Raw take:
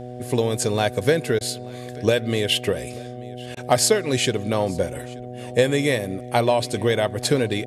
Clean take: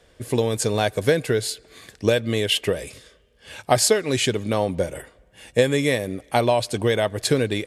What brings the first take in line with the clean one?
clip repair -4 dBFS; de-hum 123.6 Hz, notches 6; interpolate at 1.39/3.55 s, 17 ms; inverse comb 884 ms -23 dB

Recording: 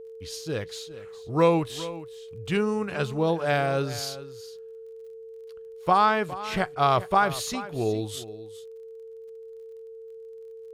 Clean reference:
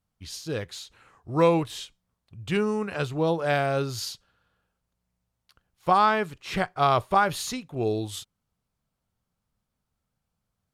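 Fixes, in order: de-click; band-stop 450 Hz, Q 30; inverse comb 411 ms -15.5 dB

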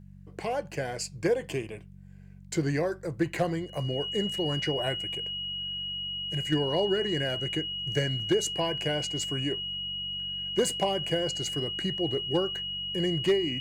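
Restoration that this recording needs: clip repair -17 dBFS; de-hum 47.3 Hz, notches 4; band-stop 2.9 kHz, Q 30

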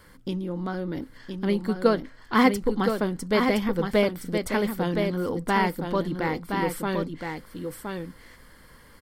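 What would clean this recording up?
inverse comb 1018 ms -5.5 dB

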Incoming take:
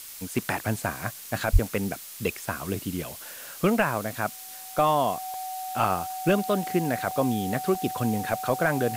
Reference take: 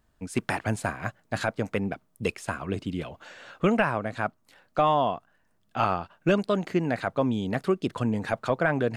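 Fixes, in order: band-stop 750 Hz, Q 30; de-plosive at 1.52 s; interpolate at 3.13/5.34/7.11/7.75 s, 1.8 ms; noise print and reduce 25 dB

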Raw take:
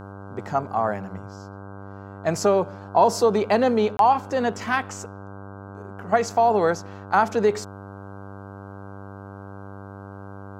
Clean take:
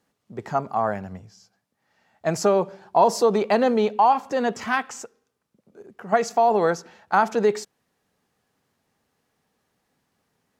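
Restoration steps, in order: de-hum 98.6 Hz, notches 16; interpolate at 3.97 s, 22 ms

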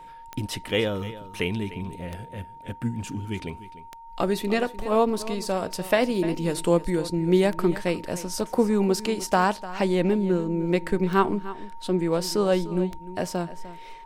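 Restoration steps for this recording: de-click; band-stop 920 Hz, Q 30; inverse comb 300 ms -15.5 dB

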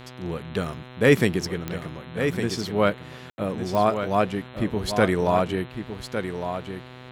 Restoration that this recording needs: de-click; de-hum 126.2 Hz, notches 33; room tone fill 3.30–3.38 s; inverse comb 1157 ms -8 dB

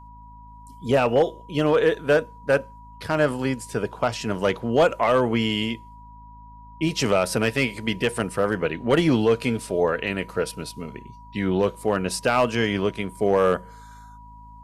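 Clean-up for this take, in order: clip repair -11 dBFS; de-hum 53.7 Hz, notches 5; band-stop 970 Hz, Q 30

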